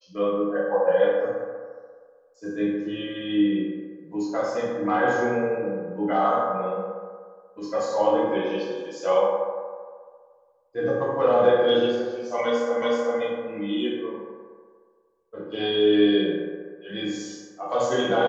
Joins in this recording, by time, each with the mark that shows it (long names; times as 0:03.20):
0:12.82: the same again, the last 0.38 s